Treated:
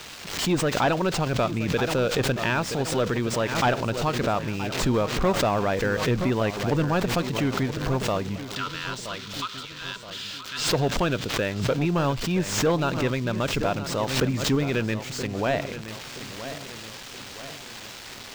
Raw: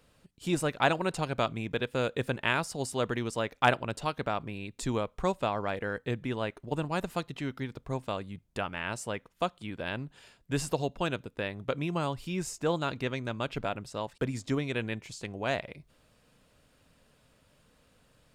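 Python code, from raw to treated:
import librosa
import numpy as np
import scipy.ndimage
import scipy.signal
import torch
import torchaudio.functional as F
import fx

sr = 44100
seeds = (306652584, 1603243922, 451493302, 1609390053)

y = x + 0.5 * 10.0 ** (-23.0 / 20.0) * np.diff(np.sign(x), prepend=np.sign(x[:1]))
y = fx.high_shelf(y, sr, hz=7100.0, db=8.0)
y = fx.rider(y, sr, range_db=10, speed_s=2.0)
y = fx.cheby_ripple_highpass(y, sr, hz=960.0, ripple_db=9, at=(8.43, 10.72))
y = 10.0 ** (-24.0 / 20.0) * np.tanh(y / 10.0 ** (-24.0 / 20.0))
y = fx.air_absorb(y, sr, metres=190.0)
y = fx.echo_feedback(y, sr, ms=973, feedback_pct=49, wet_db=-12.5)
y = fx.pre_swell(y, sr, db_per_s=67.0)
y = y * 10.0 ** (9.0 / 20.0)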